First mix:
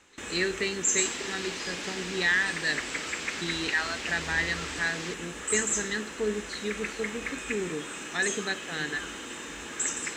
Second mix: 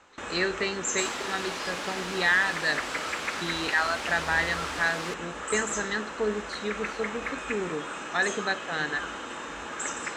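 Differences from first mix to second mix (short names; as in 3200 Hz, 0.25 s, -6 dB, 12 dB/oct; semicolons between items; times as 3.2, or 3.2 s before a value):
first sound: add air absorption 62 m; second sound: remove Chebyshev low-pass 6900 Hz, order 3; master: add band shelf 880 Hz +8 dB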